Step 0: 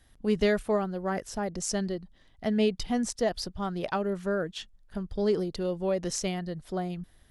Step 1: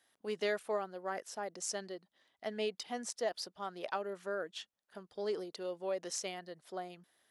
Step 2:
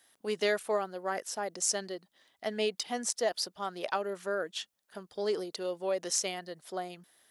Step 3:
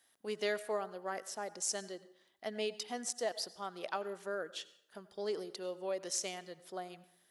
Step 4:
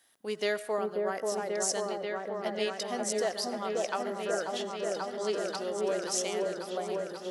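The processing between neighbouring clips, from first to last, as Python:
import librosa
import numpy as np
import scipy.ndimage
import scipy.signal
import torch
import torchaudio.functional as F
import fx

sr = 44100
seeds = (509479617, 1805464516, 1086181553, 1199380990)

y1 = scipy.signal.sosfilt(scipy.signal.butter(2, 450.0, 'highpass', fs=sr, output='sos'), x)
y1 = y1 * librosa.db_to_amplitude(-6.0)
y2 = fx.high_shelf(y1, sr, hz=5200.0, db=7.0)
y2 = y2 * librosa.db_to_amplitude(5.0)
y3 = fx.rev_plate(y2, sr, seeds[0], rt60_s=0.73, hf_ratio=0.7, predelay_ms=75, drr_db=16.5)
y3 = y3 * librosa.db_to_amplitude(-6.0)
y4 = fx.echo_opening(y3, sr, ms=537, hz=750, octaves=1, feedback_pct=70, wet_db=0)
y4 = y4 * librosa.db_to_amplitude(4.5)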